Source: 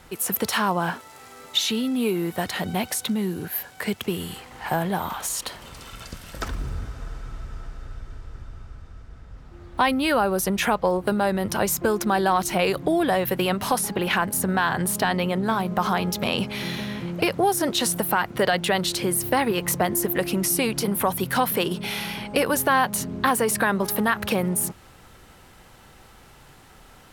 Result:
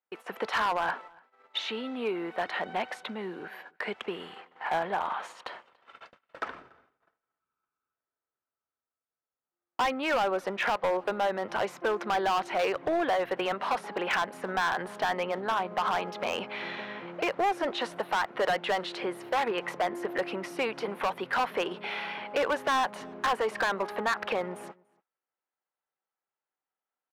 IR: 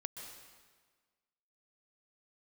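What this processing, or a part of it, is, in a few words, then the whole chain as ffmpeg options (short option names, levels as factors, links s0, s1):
walkie-talkie: -filter_complex "[0:a]highpass=520,lowpass=2300,equalizer=f=6400:w=0.79:g=-4,asoftclip=type=hard:threshold=0.075,agate=range=0.01:threshold=0.00631:ratio=16:detection=peak,asettb=1/sr,asplit=3[s0][s1][s2];[s0]atrim=end=7.394[s3];[s1]atrim=start=7.39:end=7.94,asetpts=PTS-STARTPTS,afade=t=in:d=0.004:c=qsin,afade=t=out:st=0.546:d=0.004:c=qsin,aecho=1:1:0.8:0.65,atrim=end_sample=24255[s4];[s2]atrim=start=7.936[s5];[s3][s4]acrossfade=d=0.004:c1=hsin:c2=qsin[s6];[s6][s5]acrossfade=d=0.004:c1=qsin:c2=hsin,asplit=2[s7][s8];[s8]adelay=285.7,volume=0.0501,highshelf=f=4000:g=-6.43[s9];[s7][s9]amix=inputs=2:normalize=0"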